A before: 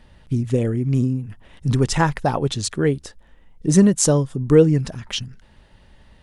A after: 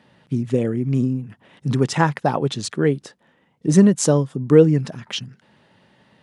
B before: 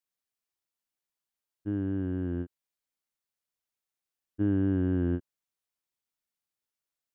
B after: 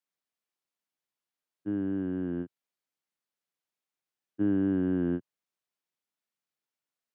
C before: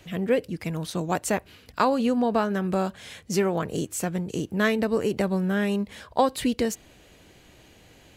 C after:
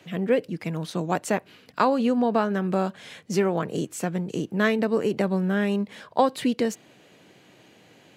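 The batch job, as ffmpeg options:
-af "highpass=f=130:w=0.5412,highpass=f=130:w=1.3066,highshelf=f=6000:g=-8.5,volume=1.12"

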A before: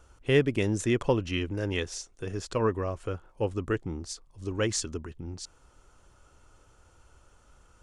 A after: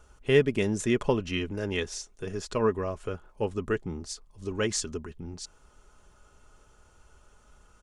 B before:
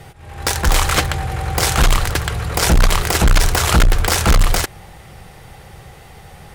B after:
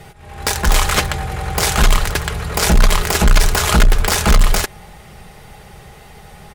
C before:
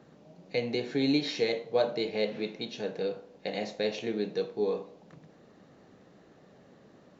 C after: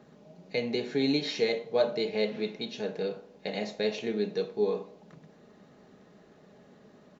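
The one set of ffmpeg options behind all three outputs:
-af "aecho=1:1:4.8:0.37"

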